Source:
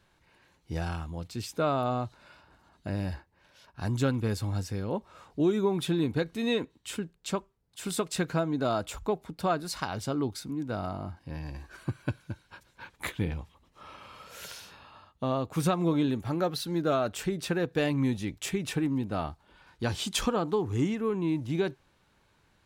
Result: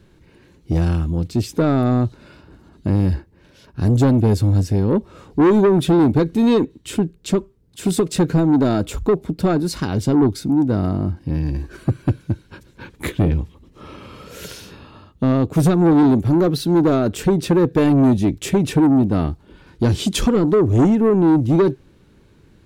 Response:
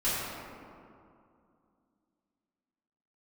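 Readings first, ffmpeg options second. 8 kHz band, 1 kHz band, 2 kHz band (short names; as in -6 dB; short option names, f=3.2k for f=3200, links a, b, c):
+7.0 dB, +8.0 dB, +5.5 dB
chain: -filter_complex "[0:a]lowshelf=f=530:t=q:w=1.5:g=10.5,acrossover=split=5800[a][b];[a]asoftclip=type=tanh:threshold=-17dB[c];[c][b]amix=inputs=2:normalize=0,volume=7dB"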